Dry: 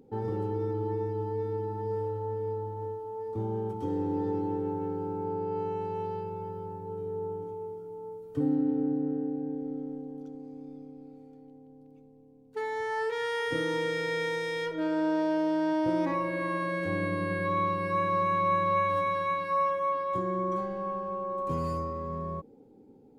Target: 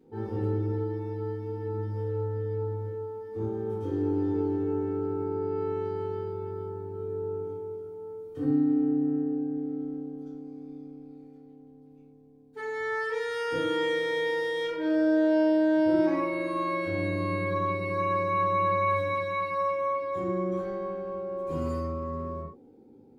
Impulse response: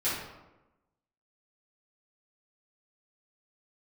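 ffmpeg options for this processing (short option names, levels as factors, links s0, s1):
-filter_complex "[0:a]asettb=1/sr,asplit=3[s0][s1][s2];[s0]atrim=end=0.714[s3];[s1]atrim=start=0.71:end=1.66,asetpts=PTS-STARTPTS,afade=t=in:d=0.004:c=qsin,afade=t=out:st=0.946:d=0.004:c=qsin,lowshelf=f=250:g=-7[s4];[s2]atrim=start=1.656[s5];[s3][s4]acrossfade=d=0.004:c1=hsin:c2=qsin[s6];[s6][s5]acrossfade=d=0.004:c1=qsin:c2=hsin[s7];[1:a]atrim=start_sample=2205,atrim=end_sample=6174[s8];[s7][s8]afir=irnorm=-1:irlink=0,volume=0.447"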